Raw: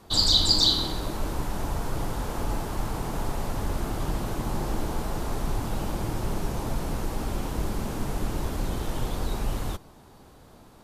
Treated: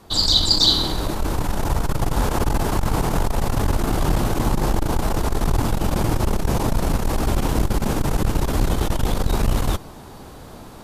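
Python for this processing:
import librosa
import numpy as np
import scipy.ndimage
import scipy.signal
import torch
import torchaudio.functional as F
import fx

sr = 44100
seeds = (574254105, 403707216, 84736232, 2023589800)

y = fx.rider(x, sr, range_db=5, speed_s=2.0)
y = fx.transformer_sat(y, sr, knee_hz=120.0)
y = y * librosa.db_to_amplitude(8.0)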